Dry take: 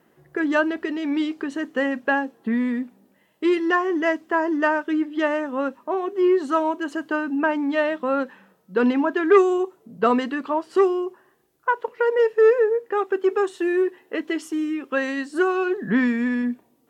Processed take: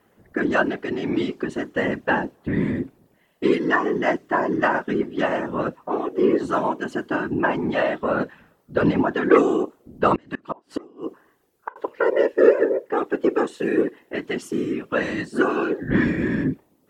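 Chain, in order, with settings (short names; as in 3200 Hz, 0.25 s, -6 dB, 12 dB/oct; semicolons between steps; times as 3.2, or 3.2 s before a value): whisperiser; 10.15–11.76 flipped gate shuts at -14 dBFS, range -28 dB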